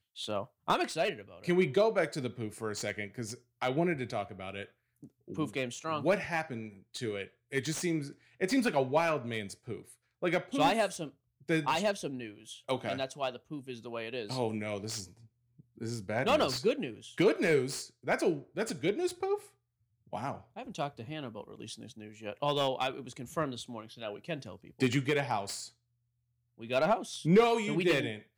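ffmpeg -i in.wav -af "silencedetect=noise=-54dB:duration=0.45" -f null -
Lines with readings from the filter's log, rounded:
silence_start: 19.50
silence_end: 20.07 | silence_duration: 0.57
silence_start: 25.70
silence_end: 26.58 | silence_duration: 0.88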